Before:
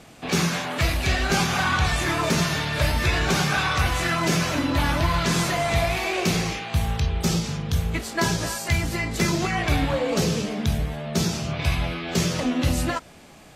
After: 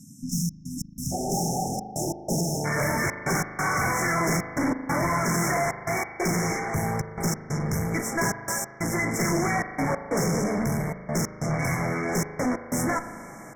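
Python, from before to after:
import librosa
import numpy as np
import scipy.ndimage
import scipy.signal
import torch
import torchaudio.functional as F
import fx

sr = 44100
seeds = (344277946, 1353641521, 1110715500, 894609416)

y = scipy.signal.sosfilt(scipy.signal.butter(4, 120.0, 'highpass', fs=sr, output='sos'), x)
y = fx.tube_stage(y, sr, drive_db=29.0, bias=0.55)
y = fx.step_gate(y, sr, bpm=92, pattern='xxx.x.xx', floor_db=-60.0, edge_ms=4.5)
y = fx.brickwall_bandstop(y, sr, low_hz=fx.steps((0.0, 290.0), (1.11, 890.0), (2.64, 2300.0)), high_hz=5200.0)
y = fx.rev_spring(y, sr, rt60_s=2.1, pass_ms=(38,), chirp_ms=30, drr_db=9.5)
y = y * 10.0 ** (7.5 / 20.0)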